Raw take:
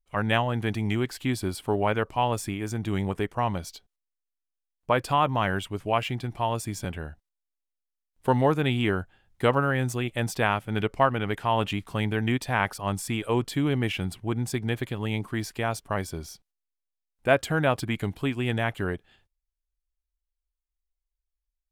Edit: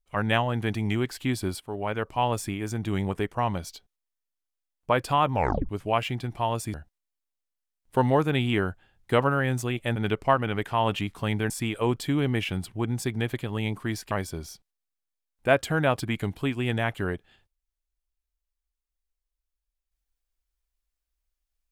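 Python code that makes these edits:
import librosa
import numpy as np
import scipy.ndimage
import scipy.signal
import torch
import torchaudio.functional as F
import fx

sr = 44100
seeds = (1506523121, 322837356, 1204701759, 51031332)

y = fx.edit(x, sr, fx.fade_in_from(start_s=1.6, length_s=0.64, floor_db=-13.0),
    fx.tape_stop(start_s=5.33, length_s=0.36),
    fx.cut(start_s=6.74, length_s=0.31),
    fx.cut(start_s=10.27, length_s=0.41),
    fx.cut(start_s=12.22, length_s=0.76),
    fx.cut(start_s=15.59, length_s=0.32), tone=tone)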